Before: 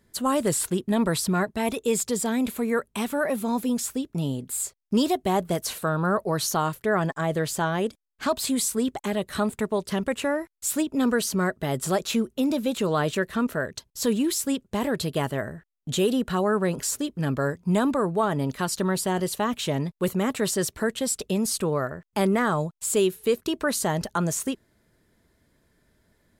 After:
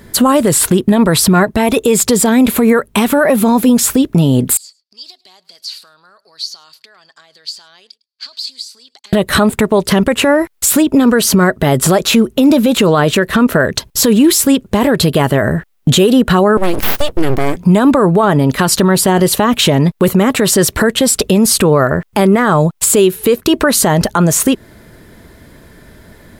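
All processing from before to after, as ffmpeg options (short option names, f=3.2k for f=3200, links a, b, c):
-filter_complex "[0:a]asettb=1/sr,asplit=3[a][b][c];[a]atrim=end=4.574[d];[b]atrim=start=4.57:end=9.13,asetpts=PTS-STARTPTS,afade=t=in:d=0.004:c=qsin,afade=t=out:st=4.556:d=0.004:c=qsin,acompressor=threshold=-31dB:ratio=16:attack=3.2:release=140:knee=1:detection=peak,bandpass=f=4.6k:t=q:w=11,aecho=1:1:105:0.0708,atrim=end_sample=201096[e];[c]atrim=start=9.126[f];[d][e]acrossfade=d=0.004:c1=hsin:c2=qsin[g];[g][f]acrossfade=d=0.004:c1=qsin:c2=hsin,asettb=1/sr,asplit=3[h][i][j];[h]atrim=end=16.574[k];[i]atrim=start=16.57:end=17.57,asetpts=PTS-STARTPTS,afade=t=in:d=0.004:c=qsin,afade=t=out:st=0.996:d=0.004:c=qsin,equalizer=f=890:w=0.47:g=-9.5,aeval=exprs='abs(val(0))':c=same[l];[j]atrim=start=17.566[m];[k][l]acrossfade=d=0.004:c1=hsin:c2=qsin[n];[n][m]acrossfade=d=0.004:c1=qsin:c2=hsin,equalizer=f=7k:w=0.82:g=-4.5,acompressor=threshold=-30dB:ratio=6,alimiter=level_in=26.5dB:limit=-1dB:release=50:level=0:latency=1,volume=-1dB"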